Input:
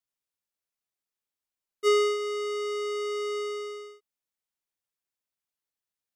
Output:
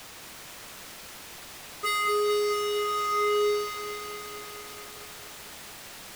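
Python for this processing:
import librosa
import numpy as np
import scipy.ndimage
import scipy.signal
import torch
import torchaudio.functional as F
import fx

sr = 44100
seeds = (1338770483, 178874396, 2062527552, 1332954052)

p1 = fx.phaser_stages(x, sr, stages=4, low_hz=460.0, high_hz=2000.0, hz=0.91, feedback_pct=20)
p2 = fx.quant_dither(p1, sr, seeds[0], bits=6, dither='triangular')
p3 = p1 + (p2 * librosa.db_to_amplitude(-11.0))
p4 = fx.lowpass(p3, sr, hz=3900.0, slope=6)
p5 = 10.0 ** (-29.5 / 20.0) * (np.abs((p4 / 10.0 ** (-29.5 / 20.0) + 3.0) % 4.0 - 2.0) - 1.0)
p6 = fx.echo_crushed(p5, sr, ms=223, feedback_pct=80, bits=10, wet_db=-5.5)
y = p6 * librosa.db_to_amplitude(7.5)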